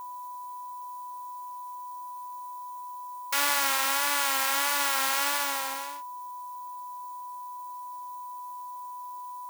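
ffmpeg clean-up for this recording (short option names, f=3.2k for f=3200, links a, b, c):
-af "bandreject=f=990:w=30,afftdn=nr=30:nf=-40"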